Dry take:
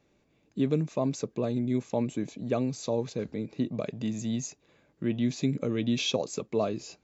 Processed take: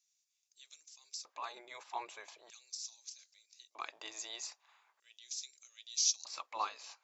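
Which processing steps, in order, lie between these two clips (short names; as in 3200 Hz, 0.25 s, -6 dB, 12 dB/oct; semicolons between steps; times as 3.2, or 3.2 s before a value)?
spectral gate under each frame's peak -10 dB weak; LFO high-pass square 0.4 Hz 970–5900 Hz; dynamic EQ 4900 Hz, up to +6 dB, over -57 dBFS, Q 1.9; gain -1.5 dB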